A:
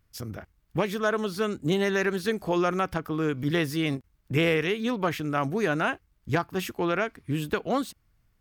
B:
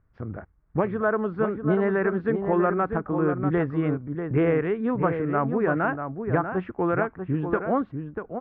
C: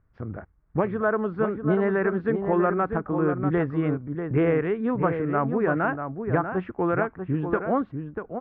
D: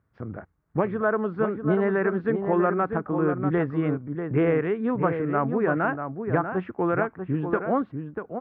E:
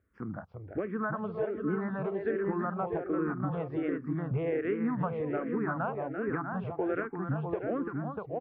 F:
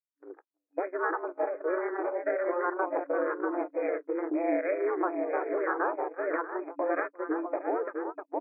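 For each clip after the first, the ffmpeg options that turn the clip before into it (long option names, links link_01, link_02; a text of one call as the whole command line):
ffmpeg -i in.wav -filter_complex "[0:a]lowpass=frequency=1600:width=0.5412,lowpass=frequency=1600:width=1.3066,asplit=2[link_01][link_02];[link_02]adelay=641.4,volume=-7dB,highshelf=frequency=4000:gain=-14.4[link_03];[link_01][link_03]amix=inputs=2:normalize=0,volume=2.5dB" out.wav
ffmpeg -i in.wav -af anull out.wav
ffmpeg -i in.wav -af "highpass=98" out.wav
ffmpeg -i in.wav -filter_complex "[0:a]acompressor=threshold=-26dB:ratio=6,asplit=2[link_01][link_02];[link_02]aecho=0:1:341:0.473[link_03];[link_01][link_03]amix=inputs=2:normalize=0,asplit=2[link_04][link_05];[link_05]afreqshift=-1.3[link_06];[link_04][link_06]amix=inputs=2:normalize=1" out.wav
ffmpeg -i in.wav -af "aeval=exprs='val(0)*sin(2*PI*180*n/s)':channel_layout=same,agate=range=-45dB:threshold=-37dB:ratio=16:detection=peak,afftfilt=real='re*between(b*sr/4096,290,2500)':imag='im*between(b*sr/4096,290,2500)':win_size=4096:overlap=0.75,volume=7dB" out.wav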